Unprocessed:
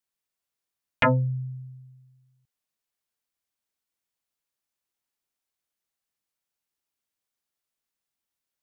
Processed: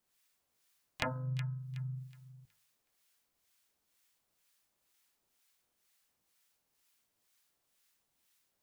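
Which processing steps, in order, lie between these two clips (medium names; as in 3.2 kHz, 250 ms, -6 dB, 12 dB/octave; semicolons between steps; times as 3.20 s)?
harmonic tremolo 2.1 Hz, crossover 1.1 kHz; compression 6:1, threshold -49 dBFS, peak gain reduction 25 dB; de-hum 51.13 Hz, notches 32; harmony voices +3 st -14 dB; feedback echo behind a high-pass 370 ms, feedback 30%, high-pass 1.8 kHz, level -9 dB; trim +12.5 dB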